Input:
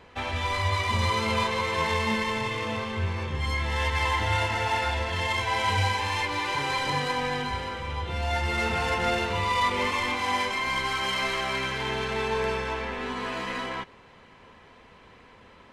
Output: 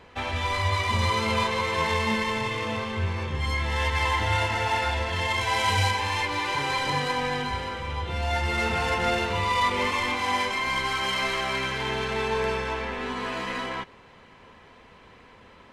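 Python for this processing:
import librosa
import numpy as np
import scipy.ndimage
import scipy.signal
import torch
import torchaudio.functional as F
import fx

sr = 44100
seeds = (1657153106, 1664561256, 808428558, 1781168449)

y = fx.high_shelf(x, sr, hz=4600.0, db=6.5, at=(5.41, 5.91))
y = y * librosa.db_to_amplitude(1.0)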